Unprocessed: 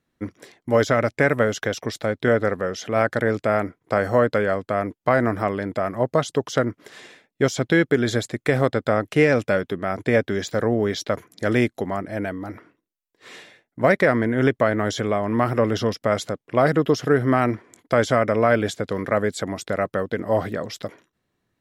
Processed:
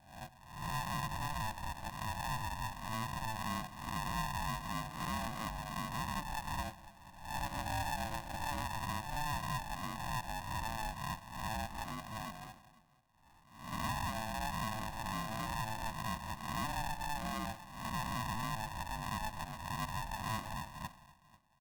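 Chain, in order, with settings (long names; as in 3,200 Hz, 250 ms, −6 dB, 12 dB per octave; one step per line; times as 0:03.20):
peak hold with a rise ahead of every peak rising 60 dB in 0.63 s
Butterworth low-pass 640 Hz 36 dB per octave
first difference
repeating echo 494 ms, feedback 31%, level −23 dB
brickwall limiter −39.5 dBFS, peak gain reduction 8.5 dB
0:06.58–0:08.63: low-shelf EQ 130 Hz +7 dB
convolution reverb RT60 1.3 s, pre-delay 10 ms, DRR 15 dB
ring modulator with a square carrier 440 Hz
level +9 dB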